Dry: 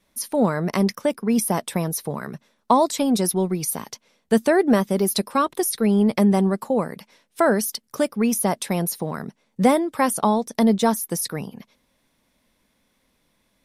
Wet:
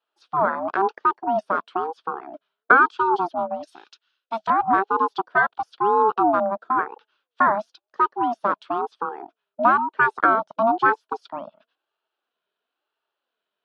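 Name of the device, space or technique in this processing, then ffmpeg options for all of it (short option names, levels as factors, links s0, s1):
voice changer toy: -filter_complex "[0:a]afwtdn=0.0794,asettb=1/sr,asplit=3[s0][s1][s2];[s0]atrim=end=3.674[s3];[s1]atrim=start=3.67:end=4.5,asetpts=PTS-STARTPTS,afade=t=in:d=0.004:c=qsin,afade=t=out:st=0.826:d=0.004:c=qsin,tiltshelf=f=1300:g=-10[s4];[s2]atrim=start=4.496[s5];[s3][s4]acrossfade=d=0.004:c1=hsin:c2=qsin[s6];[s6][s5]acrossfade=d=0.004:c1=qsin:c2=hsin,aeval=exprs='val(0)*sin(2*PI*530*n/s+530*0.25/1*sin(2*PI*1*n/s))':c=same,highpass=500,equalizer=f=540:t=q:w=4:g=-4,equalizer=f=790:t=q:w=4:g=-4,equalizer=f=1400:t=q:w=4:g=5,equalizer=f=2100:t=q:w=4:g=-8,equalizer=f=3300:t=q:w=4:g=4,lowpass=f=3800:w=0.5412,lowpass=f=3800:w=1.3066,volume=2.11"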